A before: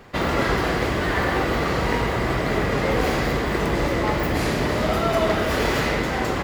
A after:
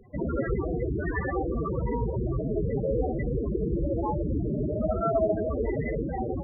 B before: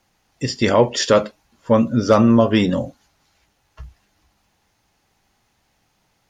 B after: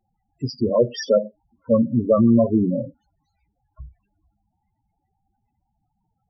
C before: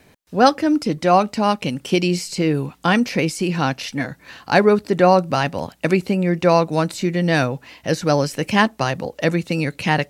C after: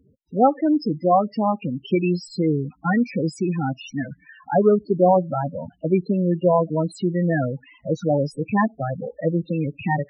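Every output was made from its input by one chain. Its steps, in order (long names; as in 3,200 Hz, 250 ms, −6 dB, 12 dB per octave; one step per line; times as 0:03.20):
spectral peaks only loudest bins 8
level −1.5 dB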